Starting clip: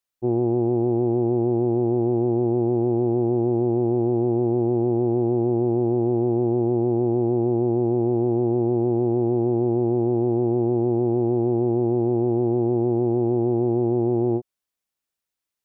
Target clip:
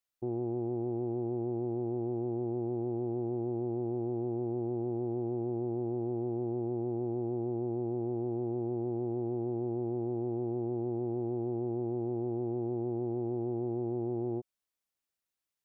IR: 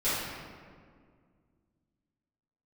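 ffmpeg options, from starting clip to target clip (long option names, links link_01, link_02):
-af "alimiter=limit=-21dB:level=0:latency=1:release=43,volume=-4.5dB"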